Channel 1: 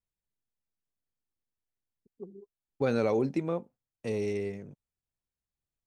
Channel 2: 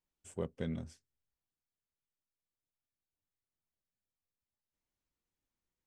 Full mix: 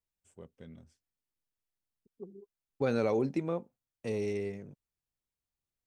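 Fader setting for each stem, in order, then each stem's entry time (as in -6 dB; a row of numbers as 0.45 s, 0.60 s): -2.0 dB, -12.5 dB; 0.00 s, 0.00 s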